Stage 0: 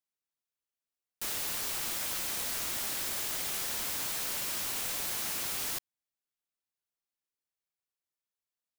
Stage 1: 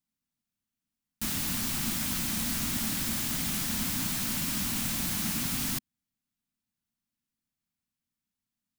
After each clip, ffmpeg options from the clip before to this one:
-af "lowshelf=f=320:t=q:w=3:g=11,volume=2.5dB"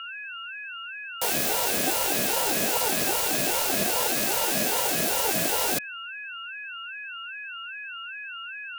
-af "aeval=exprs='val(0)+0.01*sin(2*PI*2100*n/s)':c=same,aeval=exprs='val(0)*sin(2*PI*580*n/s+580*0.3/2.5*sin(2*PI*2.5*n/s))':c=same,volume=8.5dB"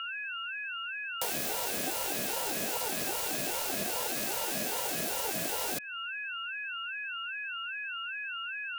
-af "acompressor=threshold=-32dB:ratio=3"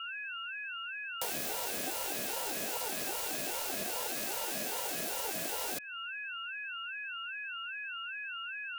-af "adynamicequalizer=threshold=0.00141:dfrequency=130:dqfactor=0.87:tfrequency=130:tqfactor=0.87:attack=5:release=100:ratio=0.375:range=2.5:mode=cutabove:tftype=bell,volume=-3dB"

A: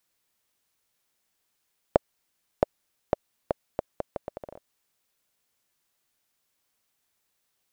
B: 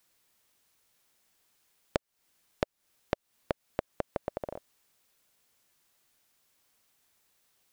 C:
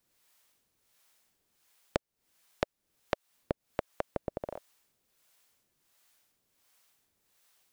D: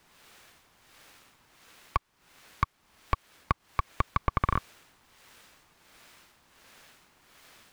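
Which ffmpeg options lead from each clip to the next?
-af "acompressor=threshold=-33dB:ratio=6,volume=5dB"
-filter_complex "[0:a]acrossover=split=530[a][b];[a]aeval=exprs='val(0)*(1-0.7/2+0.7/2*cos(2*PI*1.4*n/s))':c=same[c];[b]aeval=exprs='val(0)*(1-0.7/2-0.7/2*cos(2*PI*1.4*n/s))':c=same[d];[c][d]amix=inputs=2:normalize=0,volume=3dB"
-filter_complex "[0:a]asplit=2[a][b];[b]highpass=f=720:p=1,volume=29dB,asoftclip=type=tanh:threshold=-11.5dB[c];[a][c]amix=inputs=2:normalize=0,lowpass=f=1.4k:p=1,volume=-6dB,aeval=exprs='val(0)*sin(2*PI*530*n/s)':c=same,volume=4.5dB"

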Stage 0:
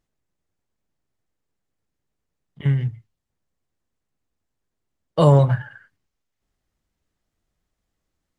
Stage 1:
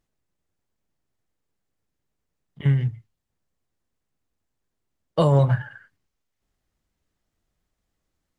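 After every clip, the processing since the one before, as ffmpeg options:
-af "alimiter=limit=-9dB:level=0:latency=1:release=171"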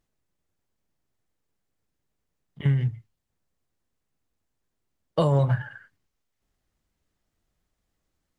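-af "acompressor=threshold=-20dB:ratio=2"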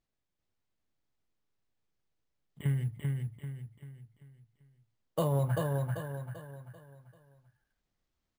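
-filter_complex "[0:a]asplit=2[a][b];[b]aecho=0:1:390|780|1170|1560|1950:0.708|0.29|0.119|0.0488|0.02[c];[a][c]amix=inputs=2:normalize=0,acrusher=samples=4:mix=1:aa=0.000001,volume=-8dB"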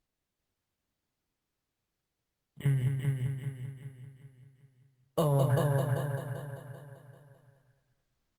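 -af "aecho=1:1:212|424|636|848:0.501|0.175|0.0614|0.0215,volume=2dB" -ar 48000 -c:a libopus -b:a 64k

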